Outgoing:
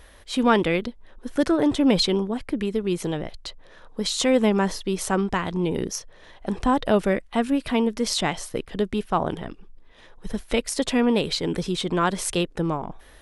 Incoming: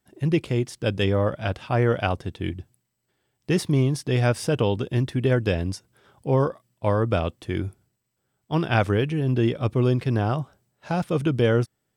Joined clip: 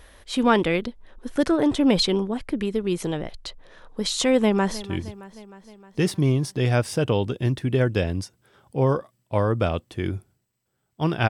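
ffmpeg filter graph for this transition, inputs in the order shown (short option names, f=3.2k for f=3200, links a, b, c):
-filter_complex "[0:a]apad=whole_dur=11.29,atrim=end=11.29,atrim=end=4.832[a];[1:a]atrim=start=2.338:end=8.8[b];[a][b]acrossfade=d=0.004:c1=hsin:c2=hsin,asplit=2[c][d];[d]afade=t=in:st=4.39:d=0.01,afade=t=out:st=4.83:d=0.01,aecho=0:1:310|620|930|1240|1550|1860|2170:0.149624|0.0972553|0.063216|0.0410904|0.0267087|0.0173607|0.0112844[e];[c][e]amix=inputs=2:normalize=0"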